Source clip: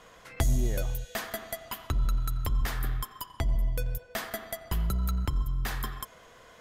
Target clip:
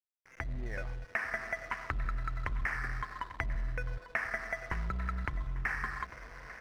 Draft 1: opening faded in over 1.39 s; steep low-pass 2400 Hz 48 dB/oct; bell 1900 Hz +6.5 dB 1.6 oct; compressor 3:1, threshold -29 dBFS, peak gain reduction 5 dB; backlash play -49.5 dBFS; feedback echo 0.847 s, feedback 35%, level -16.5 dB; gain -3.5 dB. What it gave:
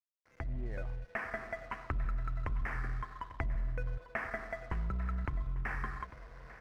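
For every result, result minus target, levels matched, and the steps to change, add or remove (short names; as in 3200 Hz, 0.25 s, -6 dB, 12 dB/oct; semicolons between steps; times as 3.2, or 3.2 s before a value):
backlash: distortion -9 dB; 2000 Hz band -4.0 dB
change: backlash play -39.5 dBFS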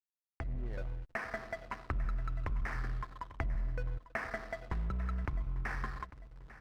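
2000 Hz band -5.0 dB
change: bell 1900 Hz +18 dB 1.6 oct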